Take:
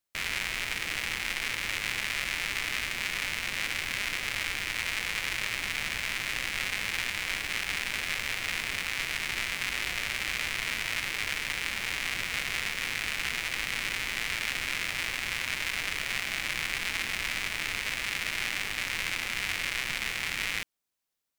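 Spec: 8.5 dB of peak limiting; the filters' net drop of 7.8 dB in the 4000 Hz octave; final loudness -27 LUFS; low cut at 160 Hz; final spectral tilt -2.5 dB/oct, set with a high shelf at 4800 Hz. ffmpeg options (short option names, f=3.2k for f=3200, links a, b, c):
-af "highpass=160,equalizer=f=4k:t=o:g=-7.5,highshelf=f=4.8k:g=-8,volume=11dB,alimiter=limit=-14.5dB:level=0:latency=1"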